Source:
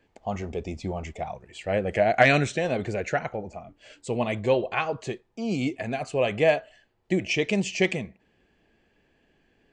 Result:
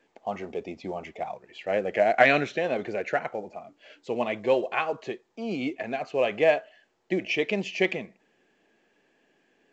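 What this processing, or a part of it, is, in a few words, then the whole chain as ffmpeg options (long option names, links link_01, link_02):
telephone: -af "highpass=260,lowpass=3600" -ar 16000 -c:a pcm_mulaw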